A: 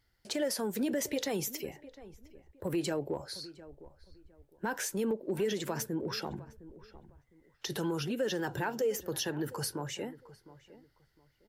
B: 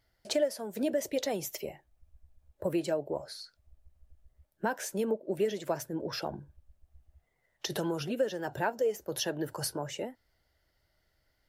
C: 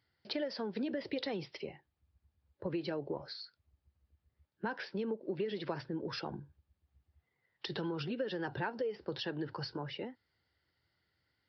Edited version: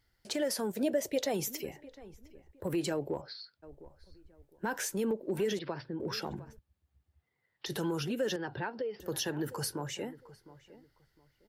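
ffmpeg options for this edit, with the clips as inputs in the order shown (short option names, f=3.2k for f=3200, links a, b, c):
-filter_complex "[2:a]asplit=4[a][b][c][d];[0:a]asplit=6[e][f][g][h][i][j];[e]atrim=end=0.722[k];[1:a]atrim=start=0.718:end=1.342[l];[f]atrim=start=1.338:end=3.22[m];[a]atrim=start=3.2:end=3.64[n];[g]atrim=start=3.62:end=5.592[o];[b]atrim=start=5.588:end=6.002[p];[h]atrim=start=5.998:end=6.592[q];[c]atrim=start=6.588:end=7.662[r];[i]atrim=start=7.658:end=8.362[s];[d]atrim=start=8.358:end=9.002[t];[j]atrim=start=8.998[u];[k][l]acrossfade=d=0.004:c1=hsin:c2=hsin[v];[v][m]acrossfade=d=0.004:c1=hsin:c2=hsin[w];[w][n]acrossfade=d=0.02:c1=tri:c2=tri[x];[x][o]acrossfade=d=0.02:c1=tri:c2=tri[y];[y][p]acrossfade=d=0.004:c1=hsin:c2=hsin[z];[z][q]acrossfade=d=0.004:c1=hsin:c2=hsin[aa];[aa][r]acrossfade=d=0.004:c1=hsin:c2=hsin[ab];[ab][s]acrossfade=d=0.004:c1=hsin:c2=hsin[ac];[ac][t]acrossfade=d=0.004:c1=hsin:c2=hsin[ad];[ad][u]acrossfade=d=0.004:c1=hsin:c2=hsin"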